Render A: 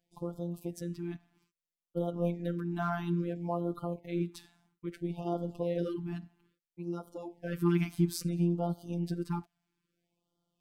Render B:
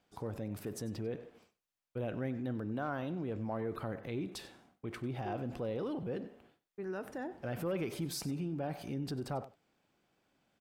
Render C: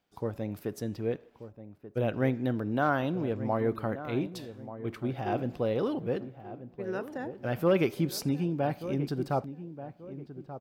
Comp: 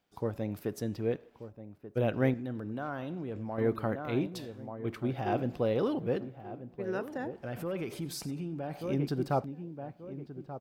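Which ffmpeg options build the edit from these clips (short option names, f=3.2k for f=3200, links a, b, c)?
-filter_complex "[1:a]asplit=2[a][b];[2:a]asplit=3[c][d][e];[c]atrim=end=2.342[f];[a]atrim=start=2.338:end=3.582[g];[d]atrim=start=3.578:end=7.362[h];[b]atrim=start=7.358:end=8.812[i];[e]atrim=start=8.808[j];[f][g]acrossfade=d=0.004:c1=hsin:c2=hsin[k];[k][h]acrossfade=d=0.004:c1=hsin:c2=hsin[l];[l][i]acrossfade=d=0.004:c1=hsin:c2=hsin[m];[m][j]acrossfade=d=0.004:c1=hsin:c2=hsin"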